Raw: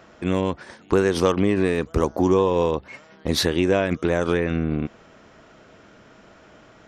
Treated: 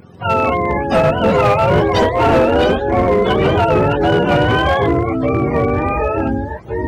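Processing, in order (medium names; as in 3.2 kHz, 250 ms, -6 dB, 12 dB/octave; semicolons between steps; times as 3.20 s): spectrum inverted on a logarithmic axis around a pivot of 500 Hz; ever faster or slower copies 149 ms, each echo -4 st, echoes 3; hard clipper -16 dBFS, distortion -14 dB; trim +8 dB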